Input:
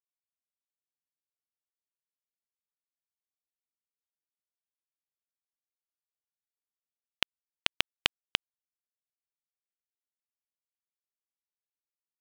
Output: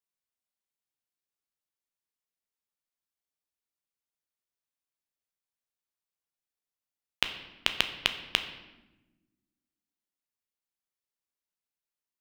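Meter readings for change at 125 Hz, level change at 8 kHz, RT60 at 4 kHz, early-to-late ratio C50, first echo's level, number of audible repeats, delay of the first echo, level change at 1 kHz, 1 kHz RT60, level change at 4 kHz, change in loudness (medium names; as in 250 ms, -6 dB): +2.5 dB, +1.5 dB, 0.75 s, 10.5 dB, no echo, no echo, no echo, +1.5 dB, 0.95 s, +1.5 dB, +1.5 dB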